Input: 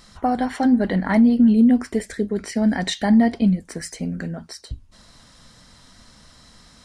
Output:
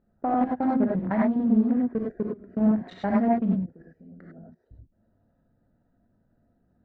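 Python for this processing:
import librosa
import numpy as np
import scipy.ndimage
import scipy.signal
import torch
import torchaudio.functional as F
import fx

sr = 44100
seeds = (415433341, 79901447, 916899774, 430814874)

y = fx.wiener(x, sr, points=41)
y = scipy.signal.sosfilt(scipy.signal.butter(2, 1500.0, 'lowpass', fs=sr, output='sos'), y)
y = fx.low_shelf(y, sr, hz=130.0, db=-9.0)
y = fx.level_steps(y, sr, step_db=23)
y = fx.rev_gated(y, sr, seeds[0], gate_ms=120, shape='rising', drr_db=-2.0)
y = fx.doppler_dist(y, sr, depth_ms=0.21)
y = F.gain(torch.from_numpy(y), -2.0).numpy()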